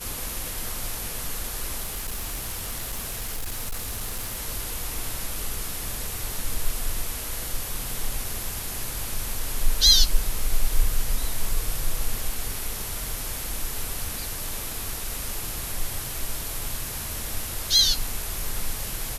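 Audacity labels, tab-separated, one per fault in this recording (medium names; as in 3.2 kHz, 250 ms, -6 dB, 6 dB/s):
1.820000	4.410000	clipped -26 dBFS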